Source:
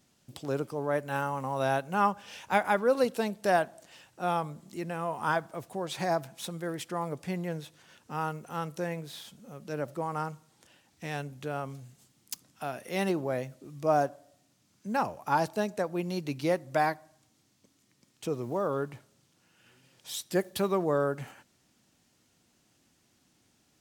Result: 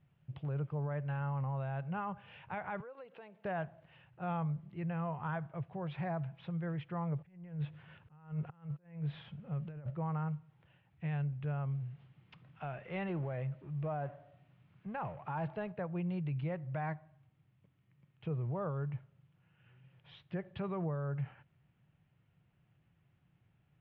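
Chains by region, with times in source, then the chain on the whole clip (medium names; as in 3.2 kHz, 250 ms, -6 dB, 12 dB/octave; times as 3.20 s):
2.80–3.45 s: compression 10:1, threshold -37 dBFS + high-pass 350 Hz
7.18–9.90 s: compressor with a negative ratio -43 dBFS + slow attack 289 ms
11.80–15.72 s: companding laws mixed up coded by mu + bass shelf 160 Hz -7.5 dB
whole clip: steep low-pass 2.9 kHz 36 dB/octave; resonant low shelf 190 Hz +8.5 dB, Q 3; peak limiter -23 dBFS; trim -7 dB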